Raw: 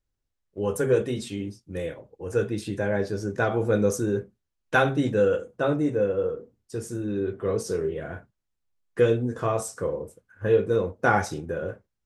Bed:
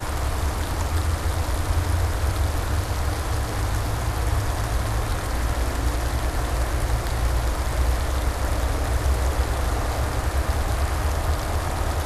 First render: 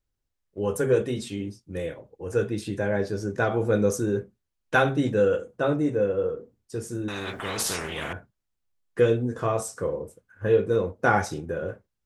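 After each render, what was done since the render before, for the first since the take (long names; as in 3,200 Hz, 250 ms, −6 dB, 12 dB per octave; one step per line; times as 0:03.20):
0:07.08–0:08.13: every bin compressed towards the loudest bin 4 to 1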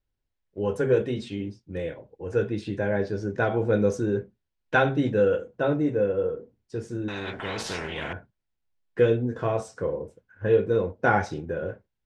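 low-pass filter 4,100 Hz 12 dB per octave
notch filter 1,200 Hz, Q 8.8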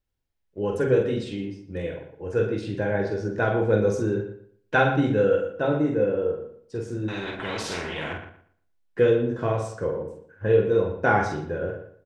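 double-tracking delay 46 ms −5 dB
on a send: feedback echo with a low-pass in the loop 118 ms, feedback 26%, low-pass 3,300 Hz, level −9.5 dB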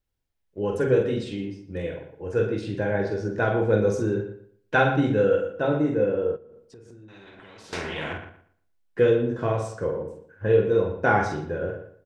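0:06.36–0:07.73: downward compressor 10 to 1, threshold −44 dBFS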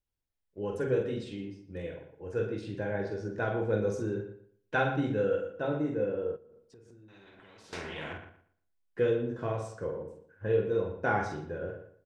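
level −8 dB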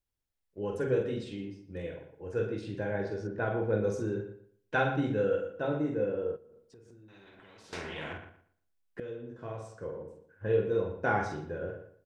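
0:03.27–0:03.84: Bessel low-pass filter 2,700 Hz
0:09.00–0:10.55: fade in, from −16 dB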